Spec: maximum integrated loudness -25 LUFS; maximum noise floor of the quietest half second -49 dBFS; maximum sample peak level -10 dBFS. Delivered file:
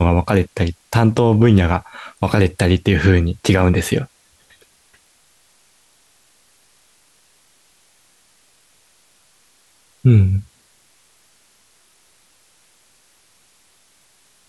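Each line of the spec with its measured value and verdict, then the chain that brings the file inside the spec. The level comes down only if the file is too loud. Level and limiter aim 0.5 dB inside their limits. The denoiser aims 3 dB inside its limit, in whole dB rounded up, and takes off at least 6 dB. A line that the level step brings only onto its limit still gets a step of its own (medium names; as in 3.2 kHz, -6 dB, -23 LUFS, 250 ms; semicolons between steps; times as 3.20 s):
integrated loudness -16.5 LUFS: fail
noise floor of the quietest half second -56 dBFS: pass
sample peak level -2.0 dBFS: fail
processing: trim -9 dB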